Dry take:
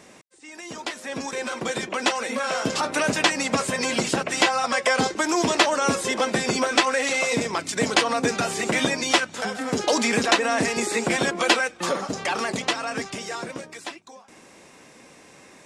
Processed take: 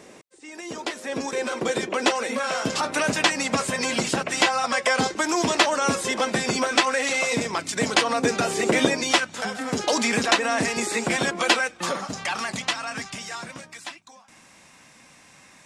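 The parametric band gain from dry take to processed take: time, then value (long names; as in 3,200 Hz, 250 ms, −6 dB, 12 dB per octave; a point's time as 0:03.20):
parametric band 410 Hz 1.1 octaves
0:02.11 +5.5 dB
0:02.52 −2 dB
0:07.94 −2 dB
0:08.81 +8 dB
0:09.18 −3 dB
0:11.77 −3 dB
0:12.32 −13 dB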